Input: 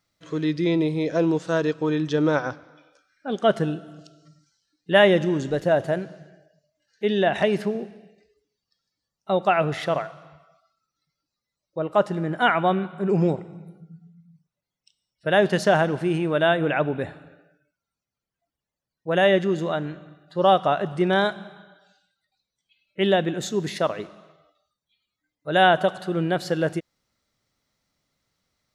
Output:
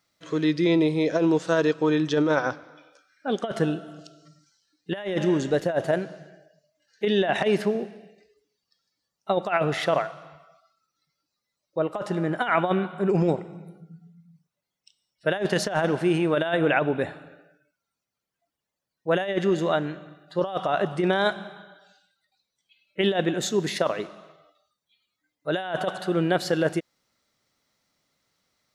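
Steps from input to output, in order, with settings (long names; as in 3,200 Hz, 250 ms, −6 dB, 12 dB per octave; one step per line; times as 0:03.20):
low-shelf EQ 120 Hz −12 dB
compressor whose output falls as the input rises −22 dBFS, ratio −0.5
level +1 dB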